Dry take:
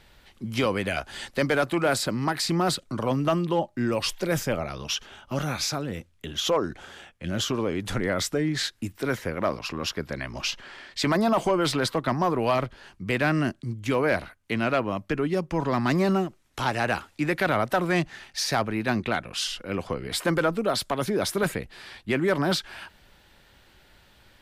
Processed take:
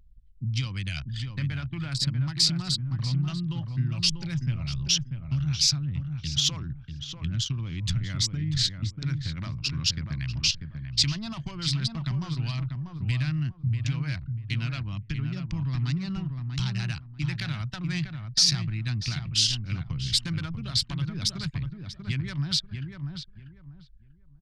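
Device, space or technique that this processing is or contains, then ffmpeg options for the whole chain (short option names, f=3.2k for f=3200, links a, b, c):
jukebox: -filter_complex "[0:a]asettb=1/sr,asplit=3[a][b][c];[a]atrim=end=1.224[d];[b]atrim=start=1.22:end=1.92,asetpts=PTS-STARTPTS,afade=t=in:d=0.004:c=qsin,afade=t=out:st=0.696:d=0.004:c=qsin,acrossover=split=2900[e][f];[f]acompressor=threshold=-53dB:ratio=4:attack=1:release=60[g];[e][g]amix=inputs=2:normalize=0[h];[c]atrim=start=1.916[i];[d][h]acrossfade=d=0.004:c1=hsin:c2=qsin[j];[j][i]acrossfade=d=0.004:c1=qsin:c2=hsin,lowpass=5.2k,lowshelf=f=170:t=q:w=3:g=7,acompressor=threshold=-27dB:ratio=3,anlmdn=3.98,firequalizer=gain_entry='entry(220,0);entry(450,-25);entry(950,-13);entry(2600,2);entry(4700,13)':delay=0.05:min_phase=1,asplit=2[k][l];[l]adelay=641,lowpass=f=1.4k:p=1,volume=-5dB,asplit=2[m][n];[n]adelay=641,lowpass=f=1.4k:p=1,volume=0.25,asplit=2[o][p];[p]adelay=641,lowpass=f=1.4k:p=1,volume=0.25[q];[k][m][o][q]amix=inputs=4:normalize=0"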